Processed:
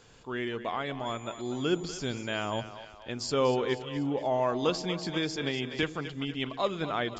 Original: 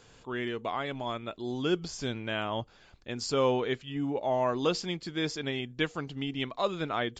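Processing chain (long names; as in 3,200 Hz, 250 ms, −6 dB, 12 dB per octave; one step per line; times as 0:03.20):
echo with a time of its own for lows and highs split 430 Hz, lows 84 ms, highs 242 ms, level −12 dB
0:01.05–0:02.60: steady tone 7,000 Hz −54 dBFS
0:04.69–0:05.83: multiband upward and downward compressor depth 100%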